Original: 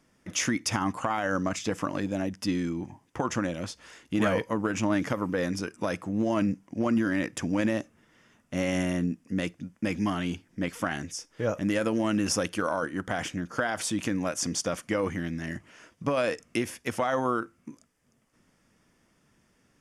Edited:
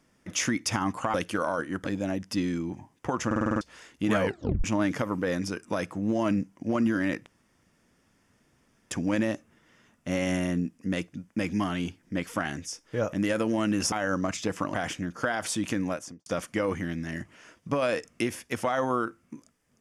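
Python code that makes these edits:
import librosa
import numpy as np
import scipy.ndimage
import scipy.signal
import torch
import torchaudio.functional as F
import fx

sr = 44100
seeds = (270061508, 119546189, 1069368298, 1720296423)

y = fx.studio_fade_out(x, sr, start_s=14.19, length_s=0.42)
y = fx.edit(y, sr, fx.swap(start_s=1.14, length_s=0.82, other_s=12.38, other_length_s=0.71),
    fx.stutter_over(start_s=3.37, slice_s=0.05, count=7),
    fx.tape_stop(start_s=4.36, length_s=0.39),
    fx.insert_room_tone(at_s=7.37, length_s=1.65), tone=tone)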